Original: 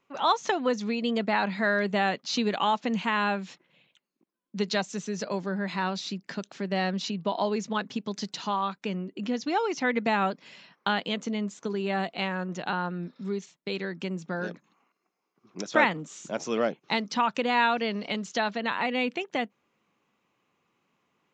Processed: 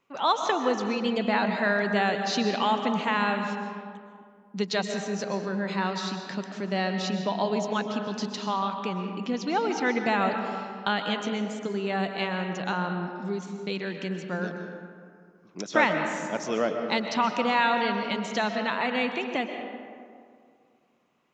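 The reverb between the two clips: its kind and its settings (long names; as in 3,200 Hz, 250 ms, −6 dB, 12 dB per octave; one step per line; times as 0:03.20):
comb and all-pass reverb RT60 2.2 s, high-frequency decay 0.45×, pre-delay 90 ms, DRR 5 dB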